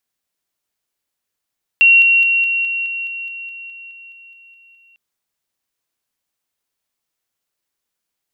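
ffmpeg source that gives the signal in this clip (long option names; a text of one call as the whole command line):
ffmpeg -f lavfi -i "aevalsrc='pow(10,(-6-3*floor(t/0.21))/20)*sin(2*PI*2740*t)':duration=3.15:sample_rate=44100" out.wav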